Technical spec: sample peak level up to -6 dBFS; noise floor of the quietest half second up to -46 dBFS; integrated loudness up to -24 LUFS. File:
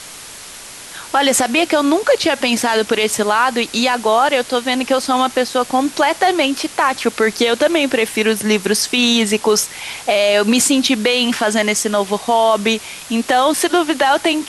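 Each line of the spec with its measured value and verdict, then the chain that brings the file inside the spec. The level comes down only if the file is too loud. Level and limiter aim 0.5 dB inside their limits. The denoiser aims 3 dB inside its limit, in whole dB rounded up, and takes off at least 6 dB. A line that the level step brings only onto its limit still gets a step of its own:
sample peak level -3.5 dBFS: fail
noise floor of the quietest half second -35 dBFS: fail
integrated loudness -15.5 LUFS: fail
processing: noise reduction 6 dB, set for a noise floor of -35 dBFS; trim -9 dB

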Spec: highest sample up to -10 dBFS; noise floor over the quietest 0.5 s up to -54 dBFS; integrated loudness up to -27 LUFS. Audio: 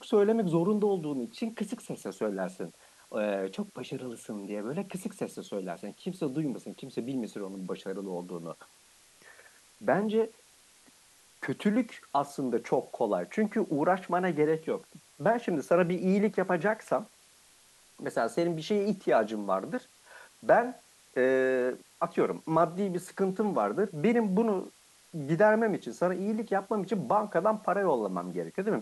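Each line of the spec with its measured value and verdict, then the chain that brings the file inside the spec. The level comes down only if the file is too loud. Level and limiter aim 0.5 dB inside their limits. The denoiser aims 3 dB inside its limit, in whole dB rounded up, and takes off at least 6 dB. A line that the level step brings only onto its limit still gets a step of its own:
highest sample -11.5 dBFS: pass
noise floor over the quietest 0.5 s -60 dBFS: pass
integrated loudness -30.0 LUFS: pass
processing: none needed

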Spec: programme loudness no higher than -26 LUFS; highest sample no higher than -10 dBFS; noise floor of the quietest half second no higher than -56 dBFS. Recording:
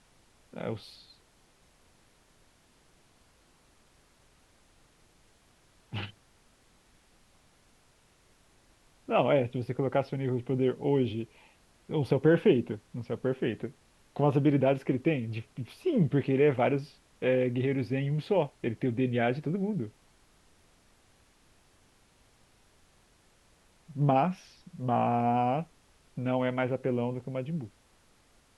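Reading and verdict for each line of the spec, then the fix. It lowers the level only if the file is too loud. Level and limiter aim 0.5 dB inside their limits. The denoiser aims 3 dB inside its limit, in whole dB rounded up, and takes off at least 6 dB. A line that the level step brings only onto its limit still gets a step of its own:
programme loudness -29.5 LUFS: pass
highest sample -11.5 dBFS: pass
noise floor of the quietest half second -64 dBFS: pass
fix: none needed

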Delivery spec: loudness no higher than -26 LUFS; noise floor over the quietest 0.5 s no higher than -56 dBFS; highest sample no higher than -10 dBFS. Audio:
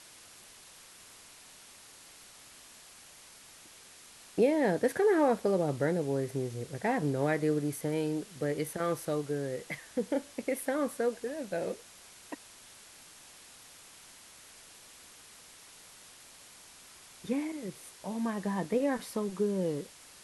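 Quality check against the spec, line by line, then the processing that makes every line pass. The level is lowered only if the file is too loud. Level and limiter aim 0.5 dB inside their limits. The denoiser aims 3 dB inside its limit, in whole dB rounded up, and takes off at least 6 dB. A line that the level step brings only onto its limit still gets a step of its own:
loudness -32.0 LUFS: pass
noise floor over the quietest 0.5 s -54 dBFS: fail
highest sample -15.0 dBFS: pass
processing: noise reduction 6 dB, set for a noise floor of -54 dBFS

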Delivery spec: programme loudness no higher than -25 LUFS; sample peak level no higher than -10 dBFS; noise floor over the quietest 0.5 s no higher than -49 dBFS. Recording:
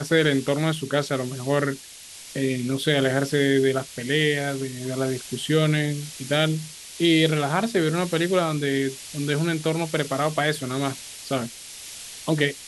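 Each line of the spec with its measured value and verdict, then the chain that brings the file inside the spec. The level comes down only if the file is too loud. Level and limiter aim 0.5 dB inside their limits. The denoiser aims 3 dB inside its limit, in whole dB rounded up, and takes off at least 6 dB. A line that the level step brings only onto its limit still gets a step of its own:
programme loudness -24.0 LUFS: fail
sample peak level -6.0 dBFS: fail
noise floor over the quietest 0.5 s -43 dBFS: fail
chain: noise reduction 8 dB, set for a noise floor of -43 dBFS; trim -1.5 dB; peak limiter -10.5 dBFS

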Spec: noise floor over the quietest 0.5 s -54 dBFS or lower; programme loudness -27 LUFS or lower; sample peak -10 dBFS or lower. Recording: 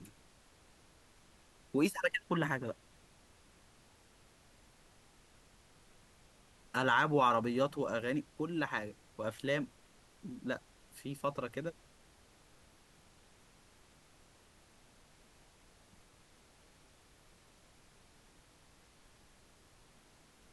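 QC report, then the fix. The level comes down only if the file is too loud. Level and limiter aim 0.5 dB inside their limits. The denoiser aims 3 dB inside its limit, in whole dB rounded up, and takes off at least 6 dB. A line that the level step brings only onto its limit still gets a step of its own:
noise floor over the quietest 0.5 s -64 dBFS: pass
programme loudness -35.5 LUFS: pass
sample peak -16.0 dBFS: pass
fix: none needed

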